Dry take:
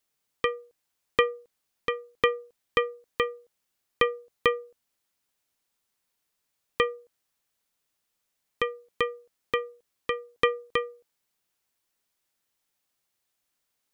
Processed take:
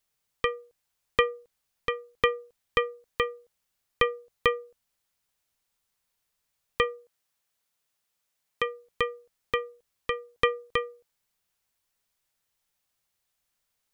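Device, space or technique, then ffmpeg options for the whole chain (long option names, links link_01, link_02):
low shelf boost with a cut just above: -filter_complex "[0:a]asettb=1/sr,asplit=3[link_01][link_02][link_03];[link_01]atrim=end=6.844[link_04];[link_02]atrim=start=6.84:end=8.66,asetpts=PTS-STARTPTS,afade=type=in:duration=0.004:curve=qsin,afade=type=out:start_time=1.816:duration=0.004:curve=qsin,highpass=frequency=170:poles=1[link_05];[link_03]atrim=start=8.656[link_06];[link_04][link_05]acrossfade=duration=0.004:curve1=hsin:curve2=qsin[link_07];[link_07][link_06]acrossfade=duration=0.004:curve1=qsin:curve2=hsin,lowshelf=frequency=95:gain=8,equalizer=frequency=300:width_type=o:width=0.83:gain=-5.5"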